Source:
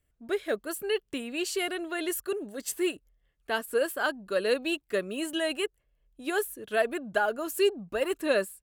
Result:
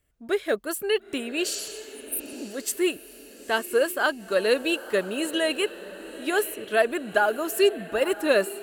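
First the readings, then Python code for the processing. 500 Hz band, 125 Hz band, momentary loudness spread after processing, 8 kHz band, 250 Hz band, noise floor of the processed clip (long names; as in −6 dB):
+4.5 dB, can't be measured, 11 LU, +5.5 dB, +3.5 dB, −47 dBFS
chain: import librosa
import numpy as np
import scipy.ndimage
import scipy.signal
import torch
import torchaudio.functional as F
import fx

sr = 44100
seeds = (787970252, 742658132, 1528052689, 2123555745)

y = fx.low_shelf(x, sr, hz=150.0, db=-4.5)
y = fx.spec_repair(y, sr, seeds[0], start_s=1.54, length_s=0.86, low_hz=220.0, high_hz=8300.0, source='both')
y = fx.echo_diffused(y, sr, ms=939, feedback_pct=51, wet_db=-15)
y = y * librosa.db_to_amplitude(5.0)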